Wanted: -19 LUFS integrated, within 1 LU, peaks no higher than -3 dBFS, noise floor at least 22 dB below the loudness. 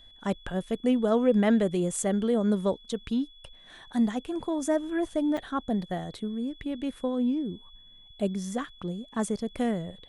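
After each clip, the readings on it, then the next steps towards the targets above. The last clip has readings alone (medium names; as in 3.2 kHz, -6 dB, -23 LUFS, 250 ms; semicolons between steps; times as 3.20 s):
dropouts 1; longest dropout 5.2 ms; steady tone 3.4 kHz; tone level -52 dBFS; loudness -29.0 LUFS; peak level -11.5 dBFS; loudness target -19.0 LUFS
-> interpolate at 5.37 s, 5.2 ms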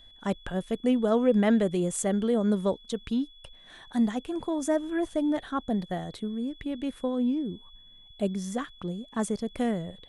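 dropouts 0; steady tone 3.4 kHz; tone level -52 dBFS
-> band-stop 3.4 kHz, Q 30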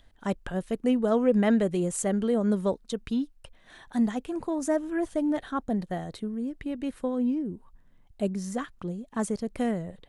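steady tone not found; loudness -29.0 LUFS; peak level -11.5 dBFS; loudness target -19.0 LUFS
-> trim +10 dB; peak limiter -3 dBFS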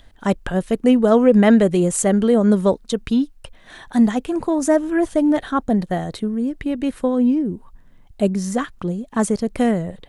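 loudness -19.0 LUFS; peak level -3.0 dBFS; noise floor -48 dBFS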